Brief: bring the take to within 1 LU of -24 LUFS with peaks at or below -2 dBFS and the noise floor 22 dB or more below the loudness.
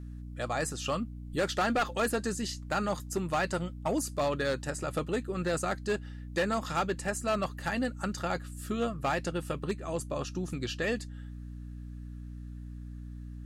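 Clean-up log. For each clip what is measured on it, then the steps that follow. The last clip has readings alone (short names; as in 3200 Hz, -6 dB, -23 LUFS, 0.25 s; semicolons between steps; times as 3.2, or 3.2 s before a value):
clipped 1.2%; flat tops at -23.0 dBFS; hum 60 Hz; harmonics up to 300 Hz; hum level -40 dBFS; loudness -32.5 LUFS; peak -23.0 dBFS; loudness target -24.0 LUFS
-> clip repair -23 dBFS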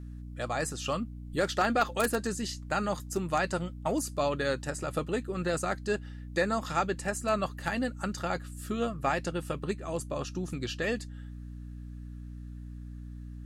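clipped 0.0%; hum 60 Hz; harmonics up to 300 Hz; hum level -40 dBFS
-> de-hum 60 Hz, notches 5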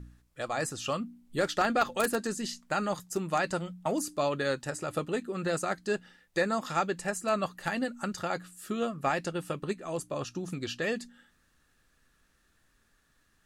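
hum none; loudness -32.0 LUFS; peak -13.0 dBFS; loudness target -24.0 LUFS
-> gain +8 dB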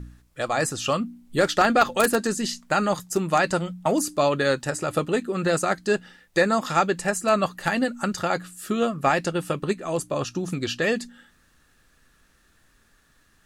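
loudness -24.0 LUFS; peak -5.0 dBFS; noise floor -62 dBFS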